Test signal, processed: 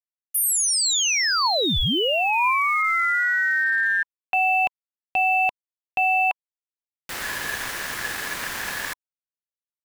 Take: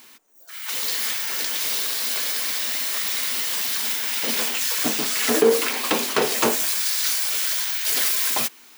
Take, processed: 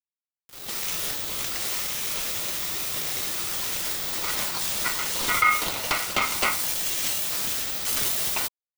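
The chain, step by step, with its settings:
centre clipping without the shift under −32.5 dBFS
ring modulation 1,700 Hz
dynamic equaliser 1,000 Hz, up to +4 dB, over −47 dBFS, Q 7.9
level −1 dB

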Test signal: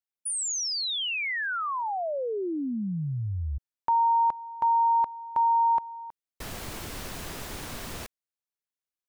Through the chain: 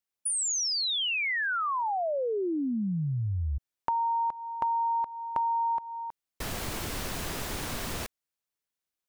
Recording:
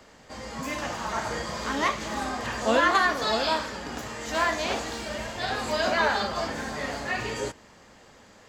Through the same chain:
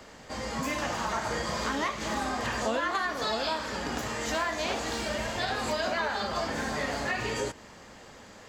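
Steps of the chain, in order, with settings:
downward compressor 5 to 1, threshold −31 dBFS
level +3.5 dB

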